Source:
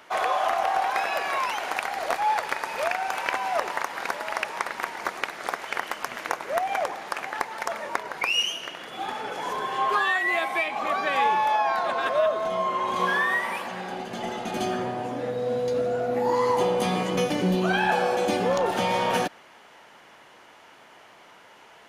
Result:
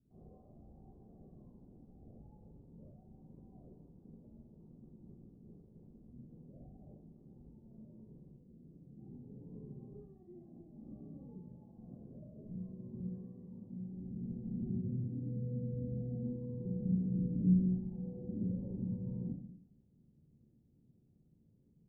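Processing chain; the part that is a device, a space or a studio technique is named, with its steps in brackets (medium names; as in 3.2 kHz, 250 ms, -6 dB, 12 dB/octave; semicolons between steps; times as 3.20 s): club heard from the street (peak limiter -17.5 dBFS, peak gain reduction 9 dB; low-pass 180 Hz 24 dB/octave; reverberation RT60 0.65 s, pre-delay 31 ms, DRR -7 dB); trim -2.5 dB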